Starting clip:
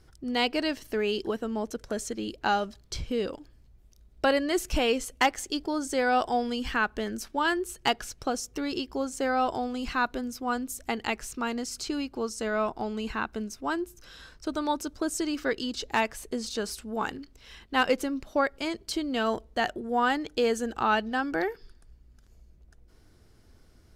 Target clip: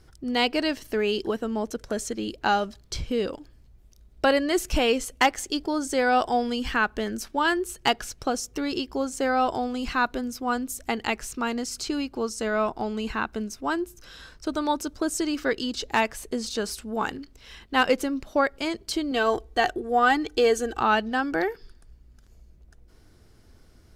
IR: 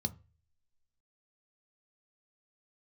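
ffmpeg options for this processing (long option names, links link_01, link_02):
-filter_complex "[0:a]asettb=1/sr,asplit=3[link_01][link_02][link_03];[link_01]atrim=end=19.114[link_04];[link_02]atrim=start=19.11:end=20.8,asetpts=PTS-STARTPTS,afade=type=in:duration=0.004:curve=qsin,afade=type=out:start_time=1.686:duration=0.004:curve=qsin,aecho=1:1:2.6:0.65,atrim=end_sample=74529[link_05];[link_03]atrim=start=20.796[link_06];[link_04][link_05]acrossfade=duration=0.004:curve1=hsin:curve2=qsin[link_07];[link_07][link_06]acrossfade=duration=0.004:curve1=qsin:curve2=hsin,volume=3dB"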